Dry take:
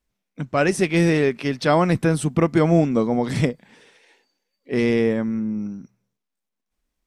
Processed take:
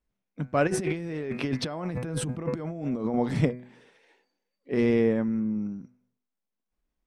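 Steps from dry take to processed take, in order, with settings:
high-shelf EQ 2,700 Hz −10 dB
hum removal 124.3 Hz, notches 21
0:00.67–0:03.14: compressor whose output falls as the input rises −28 dBFS, ratio −1
level −3 dB

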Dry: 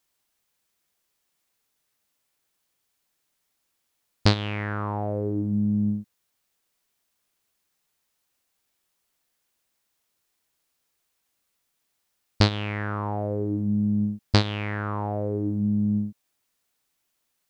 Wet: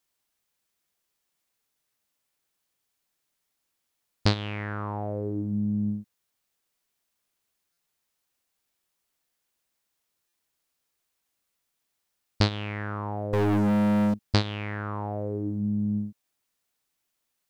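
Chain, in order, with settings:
0:13.33–0:14.14: leveller curve on the samples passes 5
buffer that repeats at 0:07.72/0:10.28, samples 256, times 8
level −3.5 dB

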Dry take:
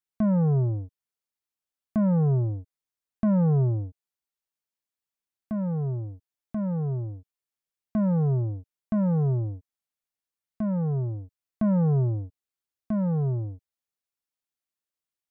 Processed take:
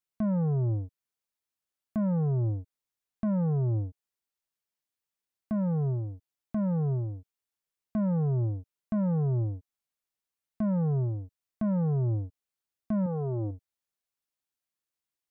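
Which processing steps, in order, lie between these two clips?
0:13.06–0:13.51: flat-topped bell 600 Hz +8.5 dB 2.7 octaves
brickwall limiter −25 dBFS, peak gain reduction 8.5 dB

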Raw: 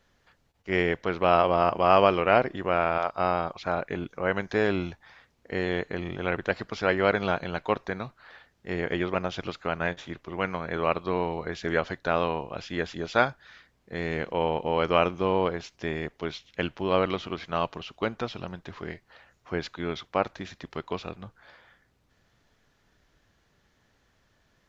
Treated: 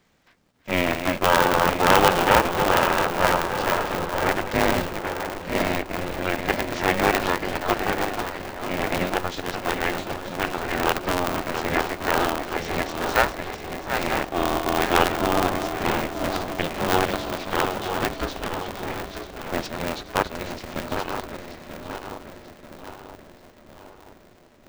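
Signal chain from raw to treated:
feedback delay that plays each chunk backwards 468 ms, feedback 65%, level −7 dB
formants moved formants +2 semitones
on a send: feedback echo with a low-pass in the loop 976 ms, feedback 61%, low-pass 1,000 Hz, level −9.5 dB
on the sum: ring modulator with a square carrier 180 Hz
level +2.5 dB

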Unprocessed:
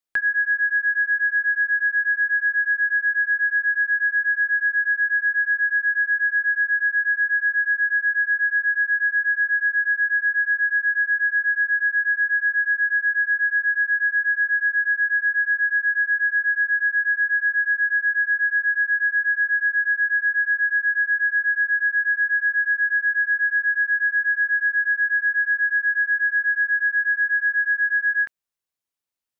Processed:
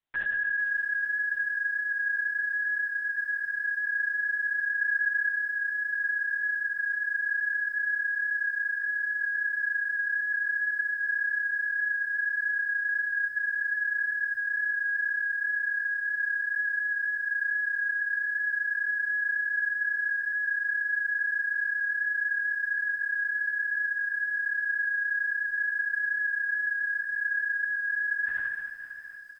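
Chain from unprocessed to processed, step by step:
peak hold with a decay on every bin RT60 1.22 s
0:02.87–0:03.85: output level in coarse steps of 10 dB
0:08.37–0:08.81: parametric band 1,500 Hz −8.5 dB 1.3 octaves
brickwall limiter −25 dBFS, peak gain reduction 10.5 dB
0:04.78–0:05.30: double-tracking delay 27 ms −7 dB
repeating echo 589 ms, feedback 57%, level −14 dB
linear-prediction vocoder at 8 kHz whisper
feedback echo at a low word length 454 ms, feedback 35%, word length 9 bits, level −14 dB

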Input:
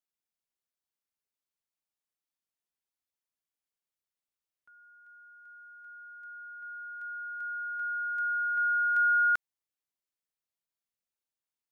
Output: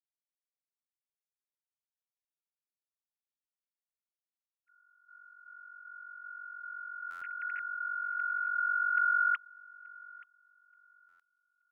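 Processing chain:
three sine waves on the formant tracks
noise gate −51 dBFS, range −9 dB
feedback echo with a high-pass in the loop 878 ms, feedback 27%, high-pass 1,000 Hz, level −21 dB
buffer that repeats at 0:07.10/0:11.08, samples 512, times 9
level −3 dB

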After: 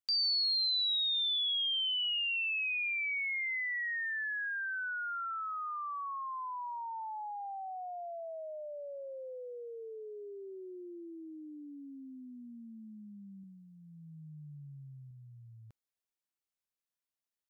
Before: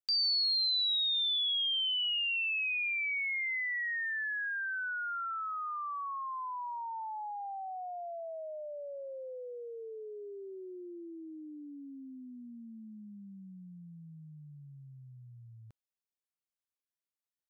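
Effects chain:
0:13.42–0:15.11: double-tracking delay 14 ms −6.5 dB
level −1 dB

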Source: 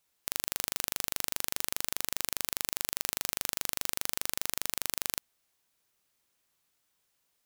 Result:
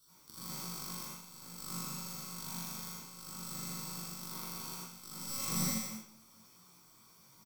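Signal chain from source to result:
delay that plays each chunk backwards 264 ms, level −13 dB
tuned comb filter 110 Hz, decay 1.2 s, harmonics all, mix 70%
brickwall limiter −22 dBFS, peak gain reduction 10 dB
high-shelf EQ 7,000 Hz +7.5 dB
mains-hum notches 50/100/150/200/250/300 Hz
comb filter 0.9 ms, depth 61%
compressor whose output falls as the input rises −59 dBFS, ratio −1
noise gate −60 dBFS, range −11 dB
convolution reverb RT60 0.45 s, pre-delay 73 ms, DRR −11 dB
micro pitch shift up and down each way 42 cents
level +13 dB

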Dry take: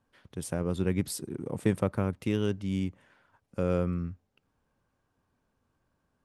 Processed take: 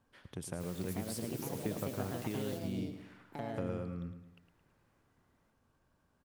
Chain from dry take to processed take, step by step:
downward compressor 2.5 to 1, threshold −43 dBFS, peak gain reduction 15.5 dB
0:00.59–0:02.57: background noise white −56 dBFS
delay with pitch and tempo change per echo 548 ms, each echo +4 semitones, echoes 2
repeating echo 109 ms, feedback 45%, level −10 dB
level +1 dB

